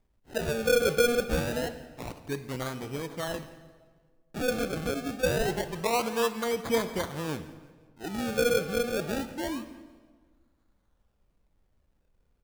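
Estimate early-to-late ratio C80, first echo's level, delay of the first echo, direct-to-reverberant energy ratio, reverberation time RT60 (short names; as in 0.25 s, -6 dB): 13.0 dB, -20.5 dB, 0.172 s, 10.0 dB, 1.6 s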